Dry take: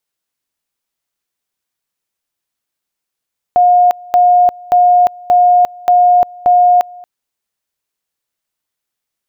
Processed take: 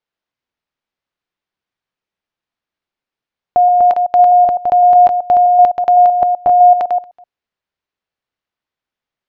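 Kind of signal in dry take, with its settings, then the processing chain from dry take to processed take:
tone at two levels in turn 715 Hz −5 dBFS, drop 25 dB, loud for 0.35 s, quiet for 0.23 s, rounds 6
delay that plays each chunk backwards 127 ms, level −5 dB
high-frequency loss of the air 210 metres

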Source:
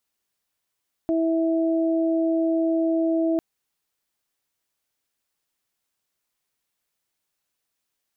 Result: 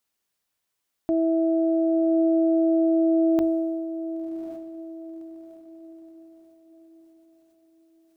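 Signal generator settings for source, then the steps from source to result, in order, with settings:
steady harmonic partials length 2.30 s, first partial 327 Hz, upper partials −5 dB, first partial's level −20 dB
mains-hum notches 50/100 Hz
feedback delay with all-pass diffusion 1,049 ms, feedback 43%, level −12 dB
level that may fall only so fast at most 23 dB per second

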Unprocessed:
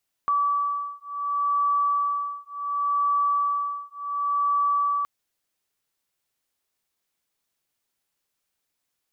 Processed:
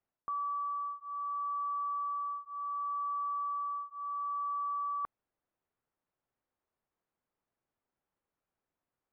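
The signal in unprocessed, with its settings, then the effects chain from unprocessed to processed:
two tones that beat 1,150 Hz, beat 0.69 Hz, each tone −25 dBFS 4.77 s
low-pass filter 1,200 Hz 12 dB per octave
reversed playback
downward compressor 4 to 1, threshold −36 dBFS
reversed playback

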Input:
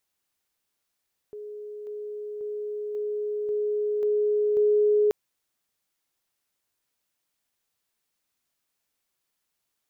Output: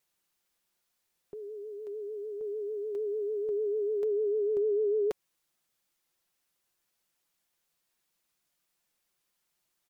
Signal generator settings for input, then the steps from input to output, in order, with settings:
level staircase 419 Hz −35.5 dBFS, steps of 3 dB, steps 7, 0.54 s 0.00 s
comb filter 5.7 ms, depth 40%
downward compressor 2.5 to 1, threshold −28 dBFS
pitch vibrato 6.7 Hz 71 cents

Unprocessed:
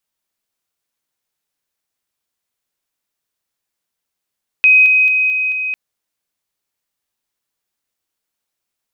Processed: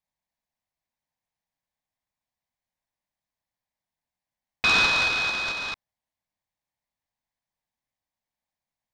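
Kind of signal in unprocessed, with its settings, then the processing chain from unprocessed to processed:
level staircase 2,520 Hz −5.5 dBFS, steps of −3 dB, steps 5, 0.22 s 0.00 s
high-shelf EQ 2,100 Hz −10.5 dB
phaser with its sweep stopped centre 2,000 Hz, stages 8
short delay modulated by noise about 1,200 Hz, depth 0.044 ms

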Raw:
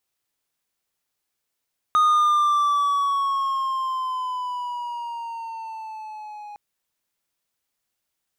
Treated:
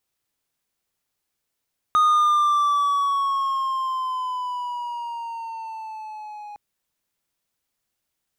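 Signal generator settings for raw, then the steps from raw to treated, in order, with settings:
pitch glide with a swell triangle, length 4.61 s, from 1,240 Hz, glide −7 semitones, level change −21.5 dB, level −12 dB
low-shelf EQ 330 Hz +4.5 dB

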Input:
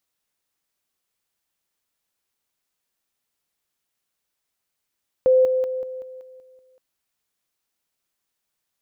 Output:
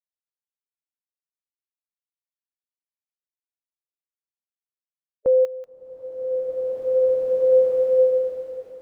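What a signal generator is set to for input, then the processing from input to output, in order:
level staircase 515 Hz −12 dBFS, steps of −6 dB, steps 8, 0.19 s 0.00 s
spectral dynamics exaggerated over time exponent 3
slow-attack reverb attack 2,470 ms, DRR −4.5 dB

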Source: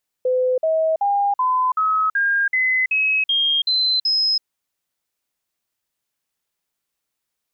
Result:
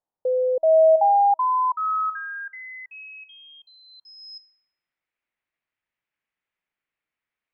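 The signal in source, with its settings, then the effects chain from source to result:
stepped sweep 508 Hz up, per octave 3, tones 11, 0.33 s, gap 0.05 s −15.5 dBFS
tuned comb filter 320 Hz, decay 0.62 s, mix 50%
low-pass filter sweep 850 Hz → 2,200 Hz, 0:03.83–0:04.40

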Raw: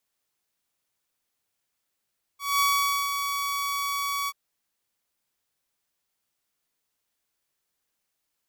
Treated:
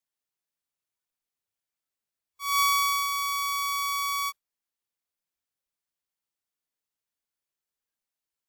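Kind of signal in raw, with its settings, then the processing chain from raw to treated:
note with an ADSR envelope saw 1,130 Hz, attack 211 ms, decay 484 ms, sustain −7 dB, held 1.89 s, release 44 ms −17 dBFS
noise reduction from a noise print of the clip's start 11 dB

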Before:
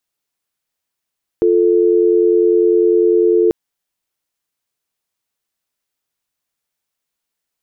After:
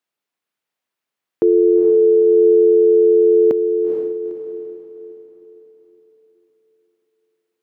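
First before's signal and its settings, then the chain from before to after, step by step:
call progress tone dial tone, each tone −12 dBFS 2.09 s
high-pass filter 160 Hz 12 dB per octave
bass and treble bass −1 dB, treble −9 dB
on a send: feedback delay with all-pass diffusion 461 ms, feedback 43%, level −5.5 dB

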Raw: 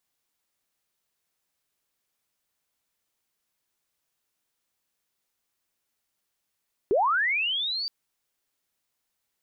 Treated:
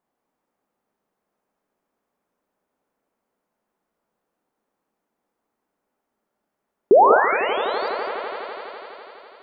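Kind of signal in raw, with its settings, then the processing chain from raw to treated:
glide linear 350 Hz → 4,700 Hz −18.5 dBFS → −28 dBFS 0.97 s
drawn EQ curve 120 Hz 0 dB, 200 Hz +12 dB, 860 Hz +11 dB, 3,900 Hz −12 dB
on a send: echo that builds up and dies away 83 ms, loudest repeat 5, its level −16.5 dB
on the sum: reverb whose tail is shaped and stops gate 220 ms rising, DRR 4 dB

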